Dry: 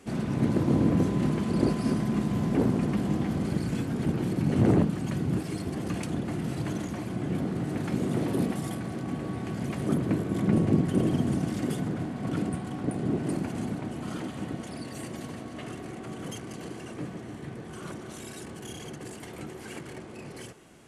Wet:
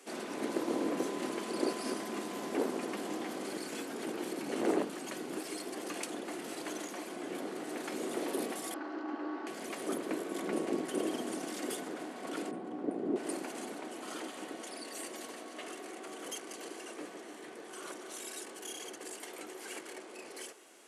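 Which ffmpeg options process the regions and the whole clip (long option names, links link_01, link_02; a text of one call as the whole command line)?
ffmpeg -i in.wav -filter_complex "[0:a]asettb=1/sr,asplit=3[link_01][link_02][link_03];[link_01]atrim=end=8.744[link_04];[link_02]atrim=start=8.74:end=9.47,asetpts=PTS-STARTPTS,afade=type=in:duration=0.004:curve=qsin,afade=type=out:start_time=0.726:duration=0.004:curve=qsin,highpass=frequency=270:width=0.5412,highpass=frequency=270:width=1.3066,equalizer=frequency=300:width_type=q:width=4:gain=10,equalizer=frequency=470:width_type=q:width=4:gain=-7,equalizer=frequency=840:width_type=q:width=4:gain=8,equalizer=frequency=1400:width_type=q:width=4:gain=6,equalizer=frequency=2300:width_type=q:width=4:gain=-8,equalizer=frequency=3500:width_type=q:width=4:gain=-10,lowpass=frequency=4100:width=0.5412,lowpass=frequency=4100:width=1.3066,bandreject=frequency=750:width=11[link_05];[link_03]atrim=start=9.466[link_06];[link_04][link_05]acrossfade=duration=0.004:curve1=hsin:curve2=qsin[link_07];[link_07][link_06]acrossfade=duration=0.004:curve1=qsin:curve2=hsin,asettb=1/sr,asplit=3[link_08][link_09][link_10];[link_08]atrim=end=12.514[link_11];[link_09]atrim=start=12.51:end=13.16,asetpts=PTS-STARTPTS,afade=type=in:duration=0.004:curve=qsin,afade=type=out:start_time=0.646:duration=0.004:curve=qsin,lowpass=frequency=2100:poles=1,tiltshelf=frequency=670:gain=8[link_12];[link_10]atrim=start=13.156[link_13];[link_11][link_12]acrossfade=duration=0.004:curve1=hsin:curve2=qsin[link_14];[link_14][link_13]acrossfade=duration=0.004:curve1=qsin:curve2=hsin,highpass=frequency=330:width=0.5412,highpass=frequency=330:width=1.3066,highshelf=frequency=3700:gain=6.5,volume=-3dB" out.wav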